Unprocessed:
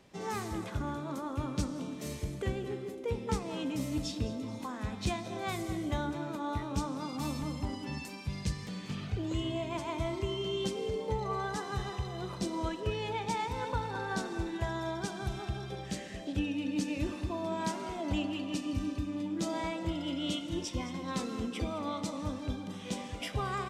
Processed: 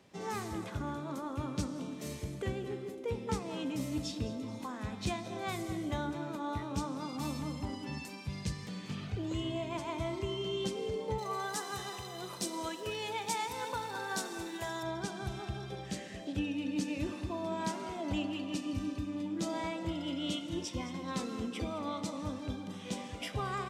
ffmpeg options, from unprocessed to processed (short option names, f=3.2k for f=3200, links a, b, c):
-filter_complex "[0:a]asettb=1/sr,asplit=3[a][b][c];[a]atrim=end=11.184[d];[b]atrim=start=11.18:end=14.83,asetpts=PTS-STARTPTS,afade=t=in:d=0.004:c=qsin,afade=t=out:st=3.646:d=0.004:c=qsin,aemphasis=mode=production:type=bsi[e];[c]atrim=start=14.826[f];[d][e]acrossfade=d=0.004:c1=hsin:c2=qsin[g];[g][f]acrossfade=d=0.004:c1=qsin:c2=hsin,highpass=71,volume=-1.5dB"